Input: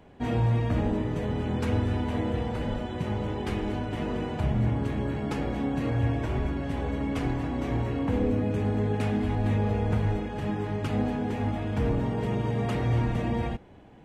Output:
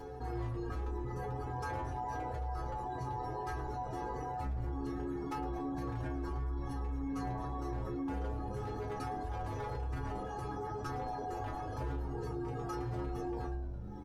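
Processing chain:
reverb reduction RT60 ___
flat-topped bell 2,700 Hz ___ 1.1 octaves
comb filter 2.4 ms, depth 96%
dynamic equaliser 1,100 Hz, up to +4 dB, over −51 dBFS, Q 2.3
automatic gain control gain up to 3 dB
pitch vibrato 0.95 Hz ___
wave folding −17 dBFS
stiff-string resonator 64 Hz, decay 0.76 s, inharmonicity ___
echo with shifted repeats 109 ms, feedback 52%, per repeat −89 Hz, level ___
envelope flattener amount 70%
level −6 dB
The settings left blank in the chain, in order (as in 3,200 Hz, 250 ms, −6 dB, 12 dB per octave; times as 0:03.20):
1.3 s, −13.5 dB, 8.1 cents, 0.008, −16 dB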